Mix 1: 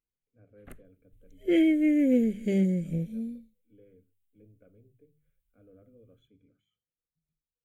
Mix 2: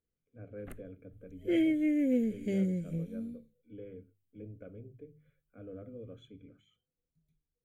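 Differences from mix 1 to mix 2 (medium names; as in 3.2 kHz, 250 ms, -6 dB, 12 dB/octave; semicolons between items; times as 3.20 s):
speech +11.0 dB; second sound -5.5 dB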